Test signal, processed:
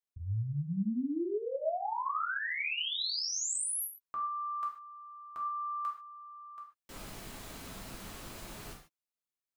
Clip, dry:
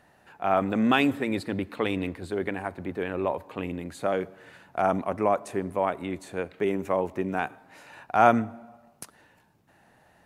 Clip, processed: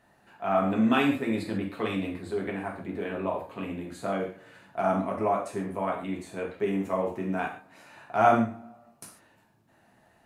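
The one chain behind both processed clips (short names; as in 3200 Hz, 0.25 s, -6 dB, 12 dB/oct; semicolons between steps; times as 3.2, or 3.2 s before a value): non-linear reverb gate 0.17 s falling, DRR -2 dB; gain -6.5 dB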